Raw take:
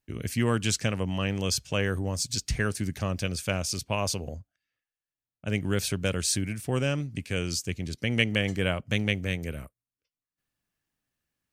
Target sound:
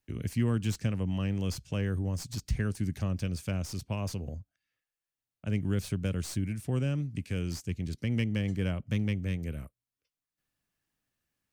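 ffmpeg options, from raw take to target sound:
-filter_complex "[0:a]acrossover=split=300[a][b];[b]acompressor=threshold=-57dB:ratio=1.5[c];[a][c]amix=inputs=2:normalize=0,acrossover=split=2500[d][e];[e]aeval=exprs='clip(val(0),-1,0.00562)':c=same[f];[d][f]amix=inputs=2:normalize=0"

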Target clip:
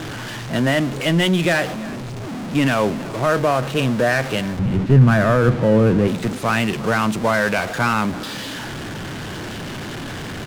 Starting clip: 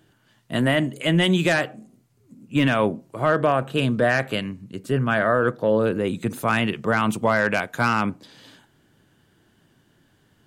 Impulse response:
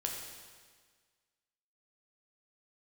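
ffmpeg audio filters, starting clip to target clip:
-filter_complex "[0:a]aeval=exprs='val(0)+0.5*0.0708*sgn(val(0))':c=same,asettb=1/sr,asplit=3[a][b][c];[a]atrim=end=4.594[d];[b]atrim=start=4.59:end=6.08,asetpts=PTS-STARTPTS,afade=t=in:d=0.004:c=qsin,afade=t=out:st=1.486:d=0.004:c=qsin,bass=f=250:g=12,treble=f=4k:g=-13[e];[c]atrim=start=6.076[f];[d][e]acrossfade=d=0.004:c1=hsin:c2=qsin[g];[g][f]acrossfade=d=0.004:c1=qsin:c2=hsin,adynamicsmooth=sensitivity=7.5:basefreq=1.3k,asplit=2[h][i];[i]aecho=0:1:333:0.106[j];[h][j]amix=inputs=2:normalize=0"

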